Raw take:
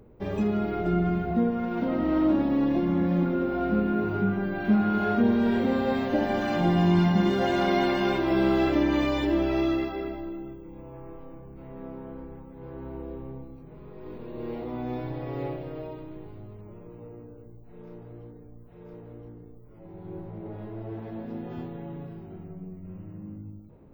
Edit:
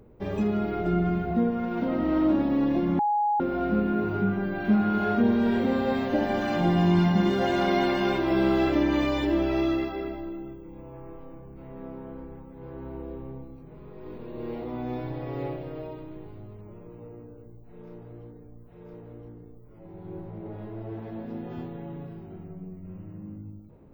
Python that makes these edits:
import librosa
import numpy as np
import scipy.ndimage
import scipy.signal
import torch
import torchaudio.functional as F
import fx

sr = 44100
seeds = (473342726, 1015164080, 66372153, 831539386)

y = fx.edit(x, sr, fx.bleep(start_s=2.99, length_s=0.41, hz=832.0, db=-21.0), tone=tone)